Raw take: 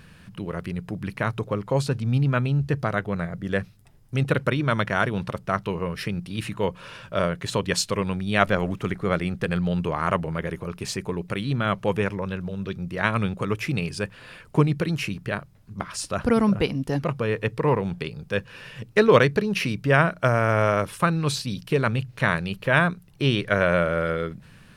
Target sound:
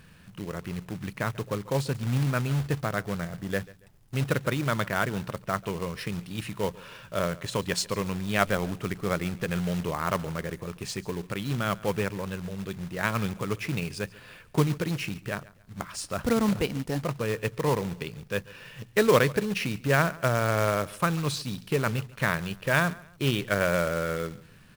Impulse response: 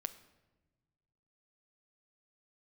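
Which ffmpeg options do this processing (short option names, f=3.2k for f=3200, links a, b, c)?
-af "aecho=1:1:140|280:0.0891|0.0276,acrusher=bits=3:mode=log:mix=0:aa=0.000001,volume=-4.5dB"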